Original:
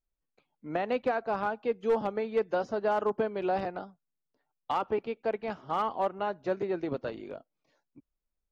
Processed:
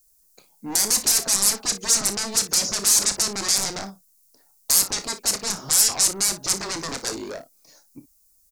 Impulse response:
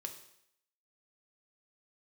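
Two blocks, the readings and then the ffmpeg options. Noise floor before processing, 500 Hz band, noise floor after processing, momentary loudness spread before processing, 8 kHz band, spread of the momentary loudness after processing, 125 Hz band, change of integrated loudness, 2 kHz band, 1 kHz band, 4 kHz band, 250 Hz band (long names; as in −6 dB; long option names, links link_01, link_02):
−84 dBFS, −7.0 dB, −60 dBFS, 10 LU, can't be measured, 12 LU, +4.5 dB, +12.0 dB, +6.5 dB, −3.5 dB, +27.0 dB, +1.5 dB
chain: -filter_complex "[0:a]aeval=exprs='0.112*sin(PI/2*7.94*val(0)/0.112)':channel_layout=same,aexciter=amount=15.5:drive=1.4:freq=4700,asplit=2[link_01][link_02];[link_02]aecho=0:1:30|57:0.282|0.178[link_03];[link_01][link_03]amix=inputs=2:normalize=0,volume=-10dB"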